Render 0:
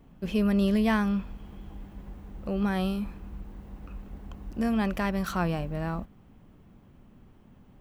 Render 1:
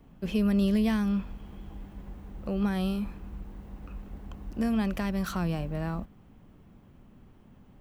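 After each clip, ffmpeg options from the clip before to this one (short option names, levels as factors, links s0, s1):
-filter_complex "[0:a]acrossover=split=340|3000[s0][s1][s2];[s1]acompressor=threshold=0.02:ratio=6[s3];[s0][s3][s2]amix=inputs=3:normalize=0"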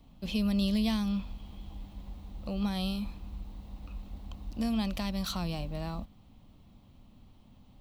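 -af "equalizer=f=160:t=o:w=0.67:g=-5,equalizer=f=400:t=o:w=0.67:g=-10,equalizer=f=1600:t=o:w=0.67:g=-11,equalizer=f=4000:t=o:w=0.67:g=10"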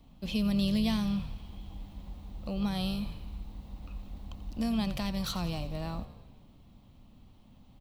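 -filter_complex "[0:a]asplit=8[s0][s1][s2][s3][s4][s5][s6][s7];[s1]adelay=87,afreqshift=-44,volume=0.188[s8];[s2]adelay=174,afreqshift=-88,volume=0.12[s9];[s3]adelay=261,afreqshift=-132,volume=0.0767[s10];[s4]adelay=348,afreqshift=-176,volume=0.0495[s11];[s5]adelay=435,afreqshift=-220,volume=0.0316[s12];[s6]adelay=522,afreqshift=-264,volume=0.0202[s13];[s7]adelay=609,afreqshift=-308,volume=0.0129[s14];[s0][s8][s9][s10][s11][s12][s13][s14]amix=inputs=8:normalize=0"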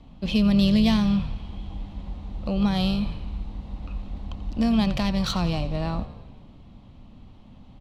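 -af "adynamicsmooth=sensitivity=4.5:basefreq=5300,volume=2.82"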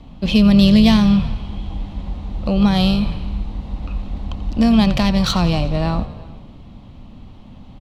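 -filter_complex "[0:a]asplit=2[s0][s1];[s1]adelay=373.2,volume=0.0631,highshelf=f=4000:g=-8.4[s2];[s0][s2]amix=inputs=2:normalize=0,volume=2.51"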